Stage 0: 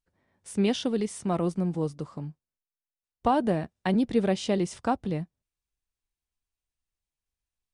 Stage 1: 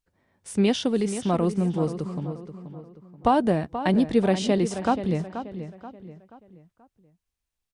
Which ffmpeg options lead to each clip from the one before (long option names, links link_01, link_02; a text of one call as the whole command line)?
ffmpeg -i in.wav -filter_complex "[0:a]asplit=2[link_01][link_02];[link_02]adelay=481,lowpass=frequency=3500:poles=1,volume=-10.5dB,asplit=2[link_03][link_04];[link_04]adelay=481,lowpass=frequency=3500:poles=1,volume=0.41,asplit=2[link_05][link_06];[link_06]adelay=481,lowpass=frequency=3500:poles=1,volume=0.41,asplit=2[link_07][link_08];[link_08]adelay=481,lowpass=frequency=3500:poles=1,volume=0.41[link_09];[link_01][link_03][link_05][link_07][link_09]amix=inputs=5:normalize=0,volume=3.5dB" out.wav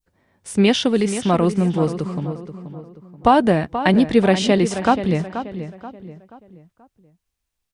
ffmpeg -i in.wav -af "adynamicequalizer=threshold=0.00794:dfrequency=2100:dqfactor=0.74:tfrequency=2100:tqfactor=0.74:attack=5:release=100:ratio=0.375:range=2.5:mode=boostabove:tftype=bell,volume=5.5dB" out.wav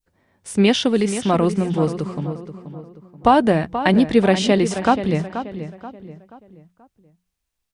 ffmpeg -i in.wav -af "bandreject=frequency=60:width_type=h:width=6,bandreject=frequency=120:width_type=h:width=6,bandreject=frequency=180:width_type=h:width=6" out.wav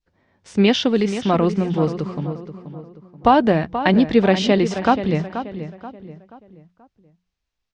ffmpeg -i in.wav -af "lowpass=frequency=5900:width=0.5412,lowpass=frequency=5900:width=1.3066" out.wav